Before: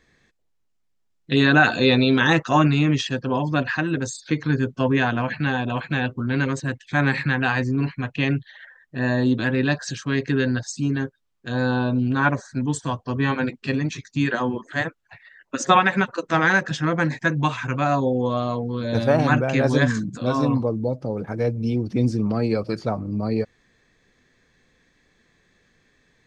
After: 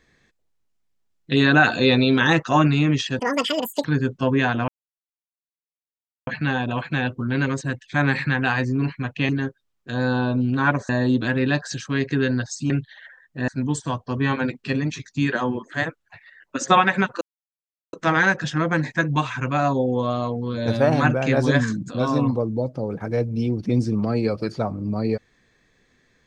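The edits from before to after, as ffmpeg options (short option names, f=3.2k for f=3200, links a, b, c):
-filter_complex "[0:a]asplit=9[a][b][c][d][e][f][g][h][i];[a]atrim=end=3.194[j];[b]atrim=start=3.19:end=4.42,asetpts=PTS-STARTPTS,asetrate=83349,aresample=44100[k];[c]atrim=start=4.416:end=5.26,asetpts=PTS-STARTPTS,afade=t=out:st=0.84:d=0.004:c=hsin,apad=pad_dur=1.59[l];[d]atrim=start=5.26:end=8.282,asetpts=PTS-STARTPTS,afade=t=in:d=0.004:c=hsin[m];[e]atrim=start=10.868:end=12.472[n];[f]atrim=start=9.058:end=10.872[o];[g]atrim=start=8.278:end=9.062[p];[h]atrim=start=12.468:end=16.2,asetpts=PTS-STARTPTS,afade=t=out:st=3.728:d=0.004:c=hsin,apad=pad_dur=0.72[q];[i]atrim=start=16.2,asetpts=PTS-STARTPTS,afade=t=in:d=0.004:c=hsin[r];[j][k]acrossfade=d=0.004:c1=hsin:c2=hsin[s];[l][m]concat=n=2:v=0:a=1[t];[s][t]acrossfade=d=0.004:c1=hsin:c2=hsin[u];[u][n]acrossfade=d=0.004:c1=hsin:c2=hsin[v];[v][o]acrossfade=d=0.004:c1=hsin:c2=hsin[w];[w][p]acrossfade=d=0.004:c1=hsin:c2=hsin[x];[q][r]concat=n=2:v=0:a=1[y];[x][y]acrossfade=d=0.004:c1=hsin:c2=hsin"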